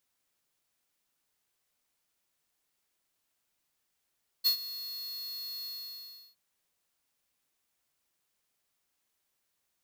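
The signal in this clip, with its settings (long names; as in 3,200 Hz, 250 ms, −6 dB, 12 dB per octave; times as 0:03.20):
note with an ADSR envelope square 4,330 Hz, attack 26 ms, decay 97 ms, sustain −16.5 dB, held 1.21 s, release 704 ms −23.5 dBFS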